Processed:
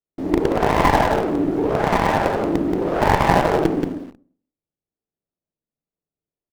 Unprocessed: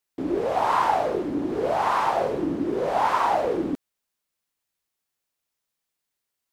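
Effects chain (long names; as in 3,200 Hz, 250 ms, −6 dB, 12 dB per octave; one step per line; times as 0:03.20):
adaptive Wiener filter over 41 samples
four-comb reverb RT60 0.55 s, DRR −3.5 dB
in parallel at −7 dB: log-companded quantiser 2 bits
on the sum: high-shelf EQ 3,700 Hz −11.5 dB
on a send: single-tap delay 179 ms −6 dB
on the sum: windowed peak hold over 17 samples
level −1 dB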